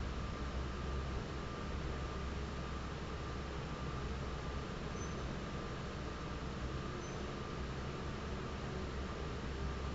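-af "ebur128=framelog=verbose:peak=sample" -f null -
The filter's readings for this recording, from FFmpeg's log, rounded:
Integrated loudness:
  I:         -43.2 LUFS
  Threshold: -53.2 LUFS
Loudness range:
  LRA:         0.6 LU
  Threshold: -63.4 LUFS
  LRA low:   -43.6 LUFS
  LRA high:  -43.0 LUFS
Sample peak:
  Peak:      -28.7 dBFS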